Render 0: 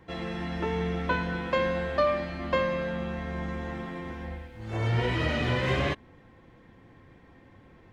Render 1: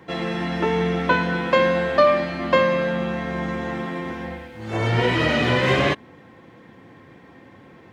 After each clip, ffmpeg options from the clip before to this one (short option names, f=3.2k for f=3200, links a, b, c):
-af "highpass=140,volume=9dB"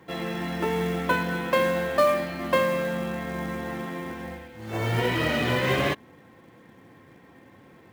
-af "acrusher=bits=5:mode=log:mix=0:aa=0.000001,volume=-5dB"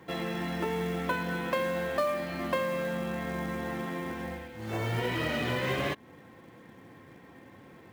-af "acompressor=threshold=-32dB:ratio=2"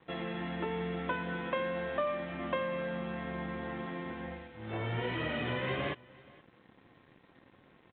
-af "aresample=8000,aeval=exprs='sgn(val(0))*max(abs(val(0))-0.00188,0)':c=same,aresample=44100,aecho=1:1:474:0.0668,volume=-3.5dB"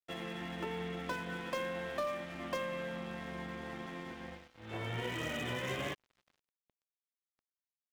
-filter_complex "[0:a]acrossover=split=210|390|970[a][b][c][d];[d]asoftclip=type=hard:threshold=-36dB[e];[a][b][c][e]amix=inputs=4:normalize=0,crystalizer=i=2.5:c=0,aeval=exprs='sgn(val(0))*max(abs(val(0))-0.00355,0)':c=same,volume=-3dB"